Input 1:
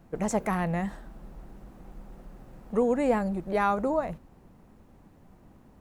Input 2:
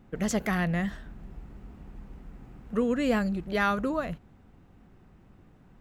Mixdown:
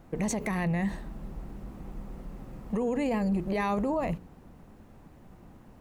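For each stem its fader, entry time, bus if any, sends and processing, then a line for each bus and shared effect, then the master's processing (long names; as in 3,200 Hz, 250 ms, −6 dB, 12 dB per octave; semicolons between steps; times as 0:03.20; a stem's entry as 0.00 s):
+2.5 dB, 0.00 s, no send, hum removal 59.87 Hz, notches 8
−2.5 dB, 0.00 s, no send, no processing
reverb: not used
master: brickwall limiter −21 dBFS, peak gain reduction 11 dB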